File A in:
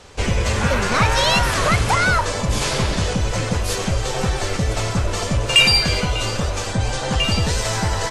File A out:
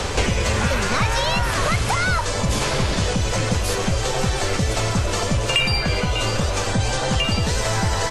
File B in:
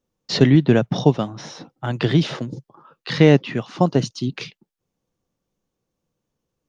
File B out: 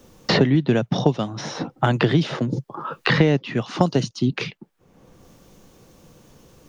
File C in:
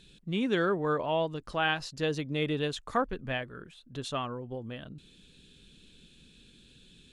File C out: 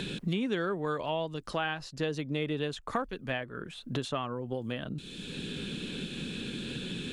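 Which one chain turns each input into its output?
three-band squash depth 100%; gain -2 dB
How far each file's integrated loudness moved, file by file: -2.0, -2.5, -3.0 LU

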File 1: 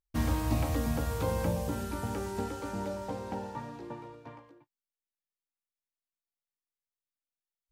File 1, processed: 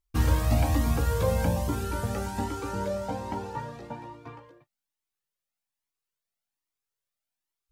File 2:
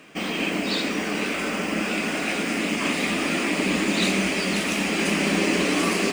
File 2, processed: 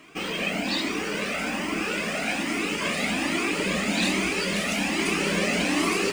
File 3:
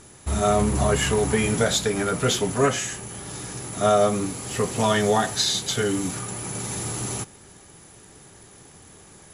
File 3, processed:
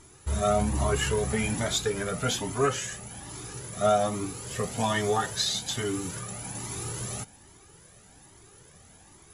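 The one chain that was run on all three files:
cascading flanger rising 1.2 Hz; normalise peaks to -12 dBFS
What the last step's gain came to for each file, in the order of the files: +9.0, +3.0, -1.0 dB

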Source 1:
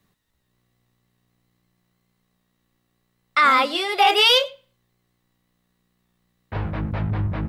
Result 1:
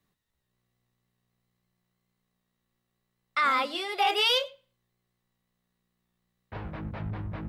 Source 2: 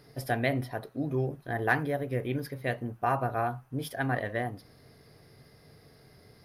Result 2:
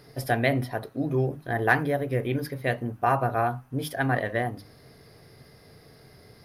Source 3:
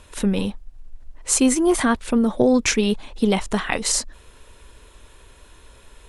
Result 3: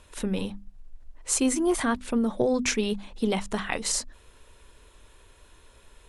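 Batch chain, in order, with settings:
notches 50/100/150/200/250/300 Hz; match loudness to -27 LUFS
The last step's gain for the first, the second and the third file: -9.0, +4.5, -6.0 dB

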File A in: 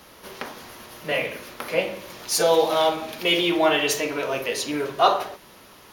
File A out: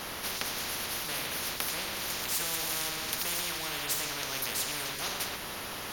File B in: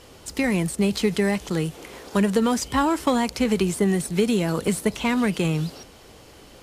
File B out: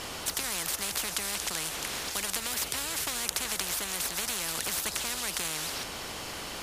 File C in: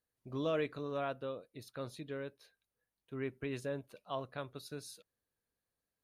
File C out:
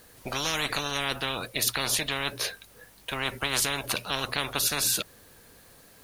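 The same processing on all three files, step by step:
notches 60/120 Hz; spectral compressor 10:1; normalise peaks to -9 dBFS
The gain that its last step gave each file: -5.0, -1.0, +15.0 dB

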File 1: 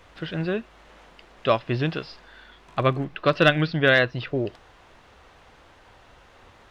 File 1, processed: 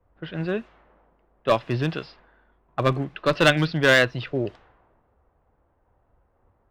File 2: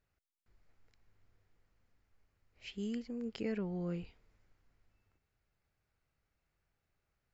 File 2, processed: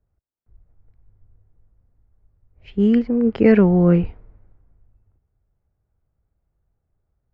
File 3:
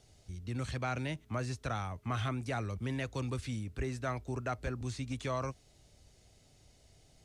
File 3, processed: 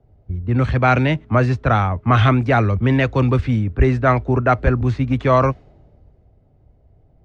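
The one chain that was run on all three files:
low-pass opened by the level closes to 800 Hz, open at -23 dBFS; one-sided clip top -16 dBFS; three-band expander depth 40%; normalise peaks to -2 dBFS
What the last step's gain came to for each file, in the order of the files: 0.0, +23.0, +20.5 dB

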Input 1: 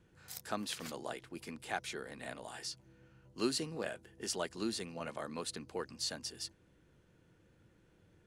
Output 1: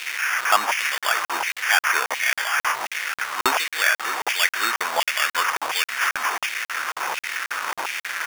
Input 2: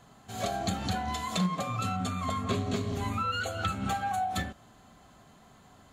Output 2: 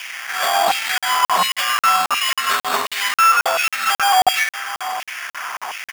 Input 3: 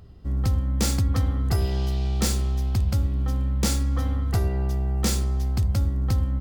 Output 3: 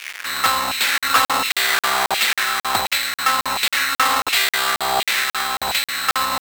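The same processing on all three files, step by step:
delta modulation 16 kbps, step -40.5 dBFS; sample-and-hold 11×; echo 0.638 s -14 dB; LFO high-pass saw down 1.4 Hz 840–2500 Hz; crackling interface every 0.27 s, samples 2048, zero, from 0.98; normalise peaks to -2 dBFS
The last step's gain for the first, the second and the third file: +22.0, +18.5, +22.0 dB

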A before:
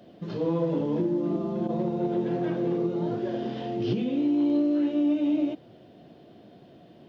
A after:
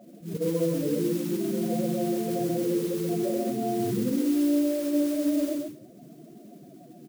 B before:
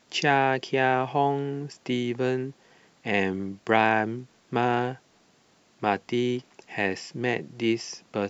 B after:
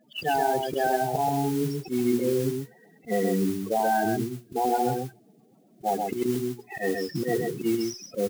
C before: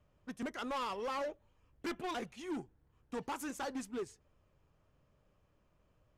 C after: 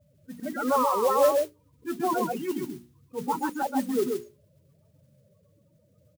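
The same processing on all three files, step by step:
HPF 95 Hz 24 dB/oct; notches 60/120/180/240/300/360/420 Hz; loudest bins only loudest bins 8; dynamic EQ 580 Hz, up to +6 dB, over -42 dBFS, Q 2.8; auto swell 0.119 s; in parallel at +2 dB: limiter -24.5 dBFS; on the sum: compressor, threshold -22 dBFS; high shelf 3200 Hz -5.5 dB; modulation noise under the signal 17 dB; echo 0.131 s -4 dB; match loudness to -27 LUFS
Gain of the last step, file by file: -2.0, +1.0, +7.5 dB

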